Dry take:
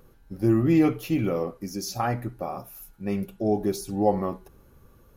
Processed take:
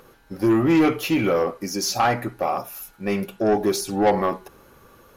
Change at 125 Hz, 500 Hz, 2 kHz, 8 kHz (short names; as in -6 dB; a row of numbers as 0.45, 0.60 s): -1.5, +5.5, +10.5, +9.0 dB